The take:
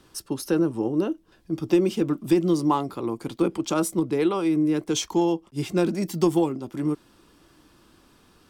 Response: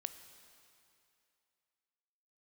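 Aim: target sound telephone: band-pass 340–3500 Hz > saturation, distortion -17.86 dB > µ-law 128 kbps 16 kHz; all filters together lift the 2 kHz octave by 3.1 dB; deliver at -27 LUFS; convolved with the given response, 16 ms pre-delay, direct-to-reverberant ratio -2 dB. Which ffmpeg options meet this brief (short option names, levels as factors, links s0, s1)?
-filter_complex "[0:a]equalizer=f=2000:t=o:g=5,asplit=2[s0][s1];[1:a]atrim=start_sample=2205,adelay=16[s2];[s1][s2]afir=irnorm=-1:irlink=0,volume=1.68[s3];[s0][s3]amix=inputs=2:normalize=0,highpass=340,lowpass=3500,asoftclip=threshold=0.2,volume=0.841" -ar 16000 -c:a pcm_mulaw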